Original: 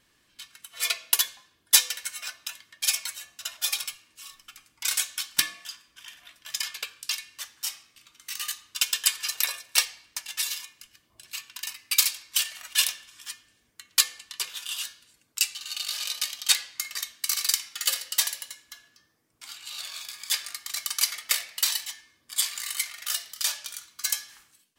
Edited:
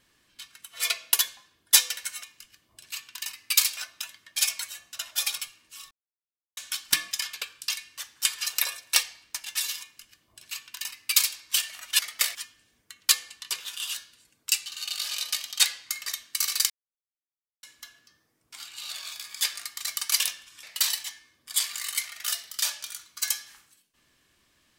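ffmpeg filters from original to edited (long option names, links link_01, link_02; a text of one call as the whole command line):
ffmpeg -i in.wav -filter_complex "[0:a]asplit=13[link_01][link_02][link_03][link_04][link_05][link_06][link_07][link_08][link_09][link_10][link_11][link_12][link_13];[link_01]atrim=end=2.232[link_14];[link_02]atrim=start=10.638:end=12.182[link_15];[link_03]atrim=start=2.228:end=4.37,asetpts=PTS-STARTPTS,afade=type=out:start_time=2.138:duration=0.004:curve=hsin[link_16];[link_04]atrim=start=4.37:end=5.03,asetpts=PTS-STARTPTS,volume=0[link_17];[link_05]atrim=start=5.03:end=5.572,asetpts=PTS-STARTPTS,afade=type=in:duration=0.004:curve=hsin[link_18];[link_06]atrim=start=6.518:end=7.662[link_19];[link_07]atrim=start=9.068:end=12.812[link_20];[link_08]atrim=start=21.088:end=21.452[link_21];[link_09]atrim=start=13.238:end=17.59,asetpts=PTS-STARTPTS,afade=type=out:start_time=4.348:duration=0.004:curve=hsin[link_22];[link_10]atrim=start=17.59:end=18.52,asetpts=PTS-STARTPTS,volume=0[link_23];[link_11]atrim=start=18.52:end=21.092,asetpts=PTS-STARTPTS,afade=type=in:duration=0.004:curve=hsin[link_24];[link_12]atrim=start=12.808:end=13.242[link_25];[link_13]atrim=start=21.448[link_26];[link_14][link_15]acrossfade=duration=0.004:curve1=hsin:curve2=hsin[link_27];[link_16][link_17][link_18]concat=n=3:v=0:a=1[link_28];[link_27][link_28]acrossfade=duration=0.004:curve1=hsin:curve2=hsin[link_29];[link_29][link_19]acrossfade=duration=0.004:curve1=hsin:curve2=hsin[link_30];[link_30][link_20]acrossfade=duration=0.004:curve1=hsin:curve2=hsin[link_31];[link_31][link_21]acrossfade=duration=0.004:curve1=hsin:curve2=hsin[link_32];[link_22][link_23][link_24]concat=n=3:v=0:a=1[link_33];[link_32][link_33]acrossfade=duration=0.004:curve1=hsin:curve2=hsin[link_34];[link_34][link_25]acrossfade=duration=0.004:curve1=hsin:curve2=hsin[link_35];[link_35][link_26]acrossfade=duration=0.004:curve1=hsin:curve2=hsin" out.wav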